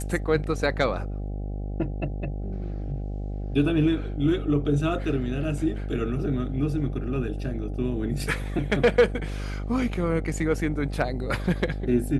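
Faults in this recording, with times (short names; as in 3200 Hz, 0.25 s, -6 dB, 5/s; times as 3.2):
buzz 50 Hz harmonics 16 -31 dBFS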